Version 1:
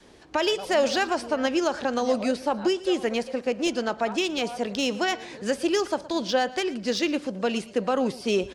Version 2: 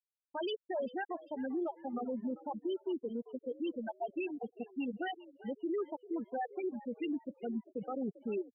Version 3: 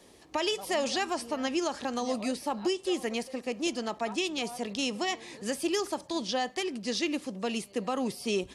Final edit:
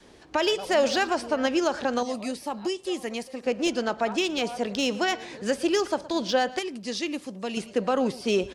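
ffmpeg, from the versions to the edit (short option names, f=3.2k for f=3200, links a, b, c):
-filter_complex "[2:a]asplit=2[a][b];[0:a]asplit=3[c][d][e];[c]atrim=end=2.032[f];[a]atrim=start=2.028:end=3.432[g];[d]atrim=start=3.428:end=6.592[h];[b]atrim=start=6.588:end=7.572[i];[e]atrim=start=7.568[j];[f][g]acrossfade=d=0.004:c1=hsin:c2=hsin[k];[k][h]acrossfade=d=0.004:c1=hsin:c2=hsin[l];[l][i]acrossfade=d=0.004:c1=hsin:c2=hsin[m];[m][j]acrossfade=d=0.004:c1=hsin:c2=hsin"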